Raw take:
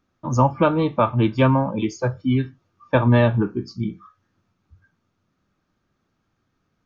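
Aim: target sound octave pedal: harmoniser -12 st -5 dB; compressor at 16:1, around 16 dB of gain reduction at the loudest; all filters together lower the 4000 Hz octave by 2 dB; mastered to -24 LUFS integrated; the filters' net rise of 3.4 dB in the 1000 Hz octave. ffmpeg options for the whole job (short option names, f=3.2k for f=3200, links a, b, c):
-filter_complex "[0:a]equalizer=f=1k:t=o:g=4,equalizer=f=4k:t=o:g=-3,acompressor=threshold=-26dB:ratio=16,asplit=2[a][b];[b]asetrate=22050,aresample=44100,atempo=2,volume=-5dB[c];[a][c]amix=inputs=2:normalize=0,volume=7.5dB"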